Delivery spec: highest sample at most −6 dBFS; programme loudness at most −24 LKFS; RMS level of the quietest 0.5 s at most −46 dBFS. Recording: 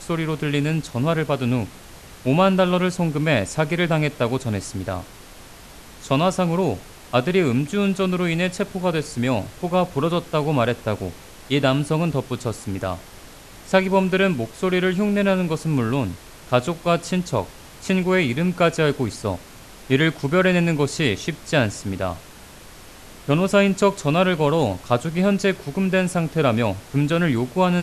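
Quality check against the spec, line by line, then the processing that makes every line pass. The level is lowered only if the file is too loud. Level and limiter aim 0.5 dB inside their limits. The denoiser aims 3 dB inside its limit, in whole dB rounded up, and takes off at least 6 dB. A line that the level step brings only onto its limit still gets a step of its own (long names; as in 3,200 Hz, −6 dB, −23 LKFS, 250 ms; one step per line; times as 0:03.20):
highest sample −3.0 dBFS: out of spec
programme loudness −21.5 LKFS: out of spec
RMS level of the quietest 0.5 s −43 dBFS: out of spec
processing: broadband denoise 6 dB, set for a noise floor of −43 dBFS
level −3 dB
brickwall limiter −6.5 dBFS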